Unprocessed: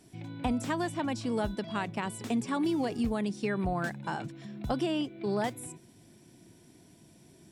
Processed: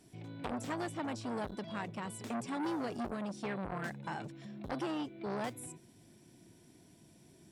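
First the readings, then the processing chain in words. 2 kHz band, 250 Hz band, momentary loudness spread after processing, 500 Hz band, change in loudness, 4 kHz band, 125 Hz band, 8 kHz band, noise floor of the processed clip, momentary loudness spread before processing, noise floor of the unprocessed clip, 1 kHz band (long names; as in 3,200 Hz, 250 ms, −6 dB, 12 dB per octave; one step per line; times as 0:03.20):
−6.0 dB, −8.0 dB, 8 LU, −7.0 dB, −7.5 dB, −7.5 dB, −7.5 dB, −5.0 dB, −62 dBFS, 9 LU, −58 dBFS, −5.5 dB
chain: saturating transformer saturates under 1,200 Hz
level −3.5 dB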